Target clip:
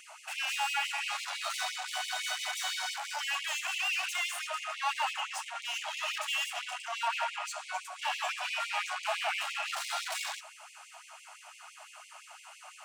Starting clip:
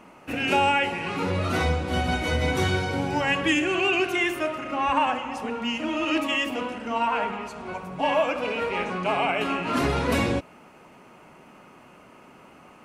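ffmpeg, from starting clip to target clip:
ffmpeg -i in.wav -filter_complex "[0:a]equalizer=frequency=125:width_type=o:width=1:gain=-6,equalizer=frequency=250:width_type=o:width=1:gain=10,equalizer=frequency=500:width_type=o:width=1:gain=-10,equalizer=frequency=1000:width_type=o:width=1:gain=-10,equalizer=frequency=2000:width_type=o:width=1:gain=-11,equalizer=frequency=8000:width_type=o:width=1:gain=12,asplit=2[link_01][link_02];[link_02]highpass=frequency=720:poles=1,volume=31dB,asoftclip=type=tanh:threshold=-10.5dB[link_03];[link_01][link_03]amix=inputs=2:normalize=0,lowpass=frequency=1500:poles=1,volume=-6dB,afftfilt=real='re*gte(b*sr/1024,560*pow(2100/560,0.5+0.5*sin(2*PI*5.9*pts/sr)))':imag='im*gte(b*sr/1024,560*pow(2100/560,0.5+0.5*sin(2*PI*5.9*pts/sr)))':win_size=1024:overlap=0.75,volume=-7dB" out.wav

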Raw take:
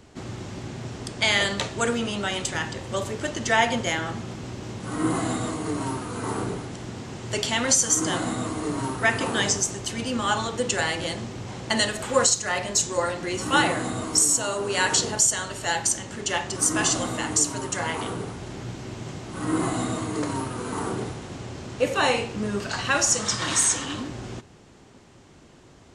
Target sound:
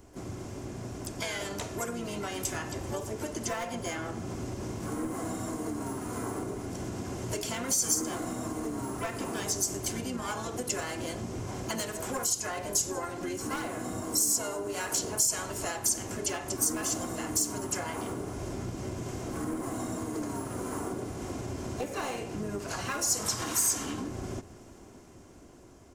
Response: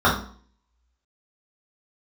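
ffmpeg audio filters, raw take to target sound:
-filter_complex "[0:a]highshelf=frequency=2200:gain=-11,bandreject=frequency=1800:width=24,aecho=1:1:2.9:0.43,asplit=3[link_01][link_02][link_03];[link_02]asetrate=33038,aresample=44100,atempo=1.33484,volume=-7dB[link_04];[link_03]asetrate=66075,aresample=44100,atempo=0.66742,volume=-11dB[link_05];[link_01][link_04][link_05]amix=inputs=3:normalize=0,dynaudnorm=framelen=630:gausssize=7:maxgain=7.5dB,aeval=exprs='clip(val(0),-1,0.211)':channel_layout=same,acompressor=threshold=-28dB:ratio=6,aexciter=amount=4.7:drive=2.6:freq=5400,volume=-4.5dB"

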